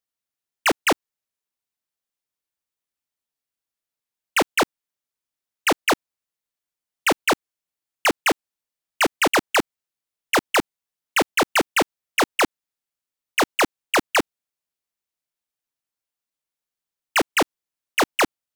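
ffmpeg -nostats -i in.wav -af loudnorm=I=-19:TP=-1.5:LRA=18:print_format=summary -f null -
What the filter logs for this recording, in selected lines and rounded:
Input Integrated:    -22.2 LUFS
Input True Peak:     -14.6 dBTP
Input LRA:             6.5 LU
Input Threshold:     -32.3 LUFS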